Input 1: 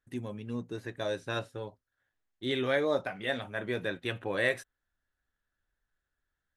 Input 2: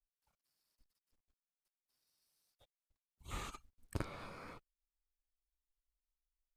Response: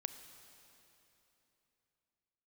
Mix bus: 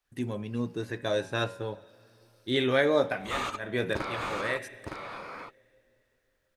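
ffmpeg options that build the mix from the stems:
-filter_complex "[0:a]bandreject=f=93.55:t=h:w=4,bandreject=f=187.1:t=h:w=4,bandreject=f=280.65:t=h:w=4,bandreject=f=374.2:t=h:w=4,bandreject=f=467.75:t=h:w=4,bandreject=f=561.3:t=h:w=4,bandreject=f=654.85:t=h:w=4,bandreject=f=748.4:t=h:w=4,bandreject=f=841.95:t=h:w=4,bandreject=f=935.5:t=h:w=4,bandreject=f=1029.05:t=h:w=4,bandreject=f=1122.6:t=h:w=4,bandreject=f=1216.15:t=h:w=4,bandreject=f=1309.7:t=h:w=4,bandreject=f=1403.25:t=h:w=4,bandreject=f=1496.8:t=h:w=4,bandreject=f=1590.35:t=h:w=4,bandreject=f=1683.9:t=h:w=4,bandreject=f=1777.45:t=h:w=4,bandreject=f=1871:t=h:w=4,bandreject=f=1964.55:t=h:w=4,bandreject=f=2058.1:t=h:w=4,bandreject=f=2151.65:t=h:w=4,bandreject=f=2245.2:t=h:w=4,bandreject=f=2338.75:t=h:w=4,bandreject=f=2432.3:t=h:w=4,bandreject=f=2525.85:t=h:w=4,bandreject=f=2619.4:t=h:w=4,bandreject=f=2712.95:t=h:w=4,bandreject=f=2806.5:t=h:w=4,bandreject=f=2900.05:t=h:w=4,bandreject=f=2993.6:t=h:w=4,adelay=50,volume=1.33,asplit=2[s0][s1];[s1]volume=0.422[s2];[1:a]bandreject=f=7500:w=24,asplit=2[s3][s4];[s4]highpass=f=720:p=1,volume=15.8,asoftclip=type=tanh:threshold=0.1[s5];[s3][s5]amix=inputs=2:normalize=0,lowpass=f=2100:p=1,volume=0.501,volume=1.26,asplit=3[s6][s7][s8];[s7]volume=0.531[s9];[s8]apad=whole_len=291842[s10];[s0][s10]sidechaincompress=threshold=0.00355:ratio=8:attack=16:release=177[s11];[2:a]atrim=start_sample=2205[s12];[s2][s12]afir=irnorm=-1:irlink=0[s13];[s9]aecho=0:1:913:1[s14];[s11][s6][s13][s14]amix=inputs=4:normalize=0"

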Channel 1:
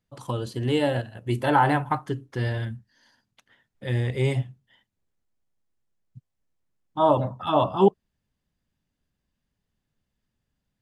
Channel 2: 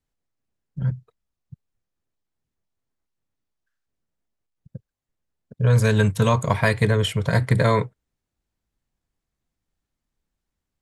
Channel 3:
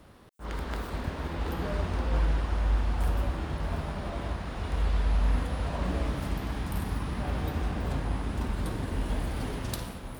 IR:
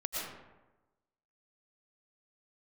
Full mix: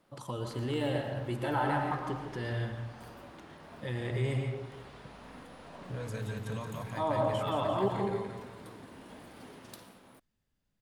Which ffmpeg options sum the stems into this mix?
-filter_complex "[0:a]volume=0.596,asplit=2[s0][s1];[s1]volume=0.316[s2];[1:a]adelay=300,volume=0.178,asplit=2[s3][s4];[s4]volume=0.335[s5];[2:a]highpass=200,volume=0.237[s6];[s0][s3]amix=inputs=2:normalize=0,bandreject=f=60:t=h:w=6,bandreject=f=120:t=h:w=6,alimiter=level_in=2.11:limit=0.0631:level=0:latency=1:release=251,volume=0.473,volume=1[s7];[3:a]atrim=start_sample=2205[s8];[s2][s8]afir=irnorm=-1:irlink=0[s9];[s5]aecho=0:1:174|348|522|696|870|1044|1218|1392:1|0.56|0.314|0.176|0.0983|0.0551|0.0308|0.0173[s10];[s6][s7][s9][s10]amix=inputs=4:normalize=0"

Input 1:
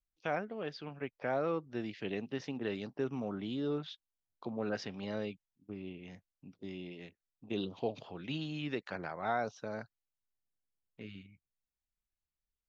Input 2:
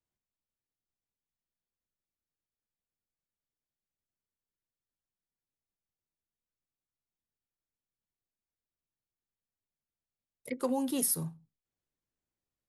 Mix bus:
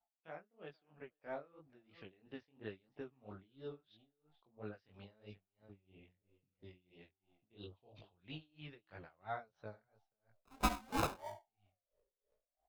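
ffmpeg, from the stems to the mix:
-filter_complex "[0:a]lowpass=f=4700:w=0.5412,lowpass=f=4700:w=1.3066,asubboost=boost=8.5:cutoff=69,volume=0.251,asplit=2[s0][s1];[s1]volume=0.1[s2];[1:a]lowshelf=f=130:t=q:w=3:g=14,acrusher=samples=34:mix=1:aa=0.000001,aeval=exprs='val(0)*sin(2*PI*630*n/s+630*0.25/0.7*sin(2*PI*0.7*n/s))':c=same,volume=1[s3];[s2]aecho=0:1:482:1[s4];[s0][s3][s4]amix=inputs=3:normalize=0,dynaudnorm=f=130:g=9:m=2.24,flanger=delay=18.5:depth=4.6:speed=3,aeval=exprs='val(0)*pow(10,-26*(0.5-0.5*cos(2*PI*3*n/s))/20)':c=same"

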